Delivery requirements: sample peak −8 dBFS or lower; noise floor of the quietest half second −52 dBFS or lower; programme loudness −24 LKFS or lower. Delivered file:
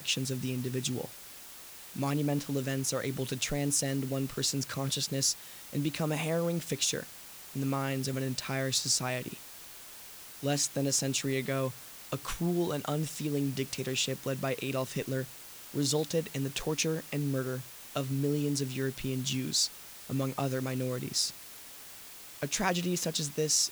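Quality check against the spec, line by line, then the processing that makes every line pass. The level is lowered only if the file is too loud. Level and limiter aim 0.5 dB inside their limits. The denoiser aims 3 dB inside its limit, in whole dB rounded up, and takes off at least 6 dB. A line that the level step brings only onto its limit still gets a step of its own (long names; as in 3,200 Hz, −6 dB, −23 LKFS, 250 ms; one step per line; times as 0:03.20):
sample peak −14.0 dBFS: in spec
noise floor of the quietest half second −48 dBFS: out of spec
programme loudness −32.0 LKFS: in spec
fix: broadband denoise 7 dB, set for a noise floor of −48 dBFS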